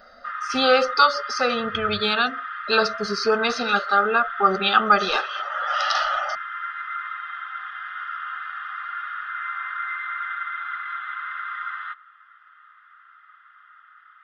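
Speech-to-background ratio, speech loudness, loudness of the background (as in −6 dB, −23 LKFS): 9.0 dB, −21.5 LKFS, −30.5 LKFS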